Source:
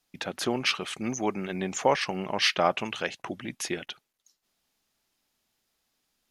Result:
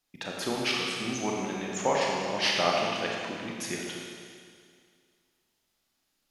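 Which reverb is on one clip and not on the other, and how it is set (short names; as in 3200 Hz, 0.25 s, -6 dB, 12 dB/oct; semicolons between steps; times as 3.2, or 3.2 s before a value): Schroeder reverb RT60 2.1 s, combs from 27 ms, DRR -2 dB; gain -4.5 dB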